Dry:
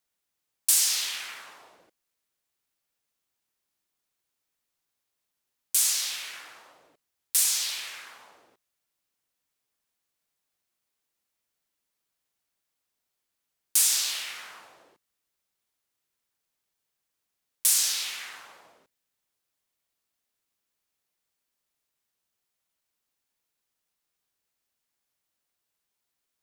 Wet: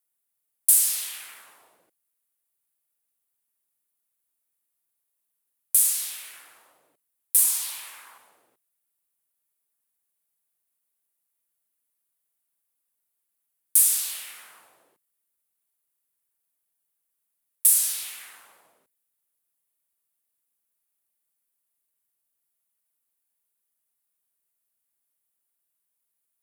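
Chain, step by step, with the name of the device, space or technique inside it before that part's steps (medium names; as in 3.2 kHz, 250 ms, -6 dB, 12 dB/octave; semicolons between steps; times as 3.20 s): budget condenser microphone (high-pass 80 Hz; resonant high shelf 7.8 kHz +10.5 dB, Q 1.5); 7.38–8.18 s: peaking EQ 980 Hz +9 dB 0.68 oct; trim -6 dB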